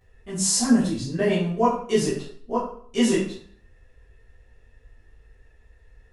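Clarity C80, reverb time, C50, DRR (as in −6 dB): 8.0 dB, 0.55 s, 4.5 dB, −11.0 dB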